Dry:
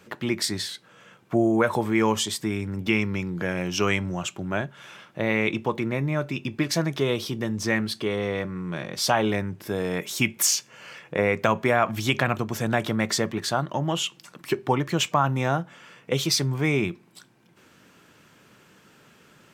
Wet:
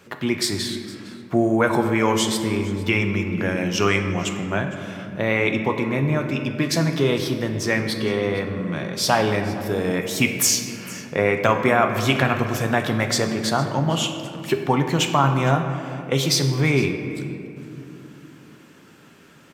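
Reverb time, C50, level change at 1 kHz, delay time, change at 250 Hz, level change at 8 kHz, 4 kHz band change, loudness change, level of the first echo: 2.8 s, 6.5 dB, +4.0 dB, 0.459 s, +4.0 dB, +3.0 dB, +3.5 dB, +3.5 dB, -20.0 dB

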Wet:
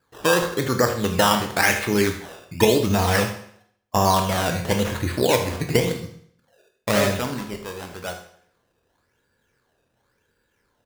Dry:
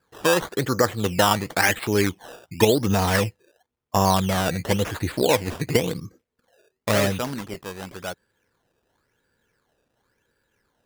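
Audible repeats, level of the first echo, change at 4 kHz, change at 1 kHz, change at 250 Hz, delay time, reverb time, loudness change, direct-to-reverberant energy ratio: 1, -14.0 dB, +1.5 dB, +1.5 dB, +1.0 dB, 77 ms, 0.65 s, +1.0 dB, 4.0 dB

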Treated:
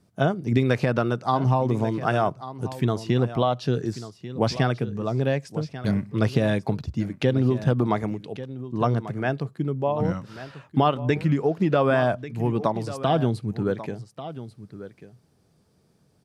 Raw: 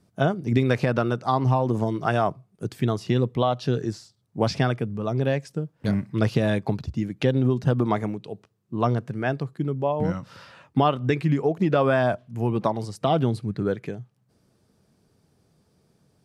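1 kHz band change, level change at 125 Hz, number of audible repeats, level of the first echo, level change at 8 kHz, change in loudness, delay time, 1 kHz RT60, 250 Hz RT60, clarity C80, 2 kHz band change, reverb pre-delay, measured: 0.0 dB, 0.0 dB, 1, -14.0 dB, n/a, 0.0 dB, 1.141 s, none, none, none, 0.0 dB, none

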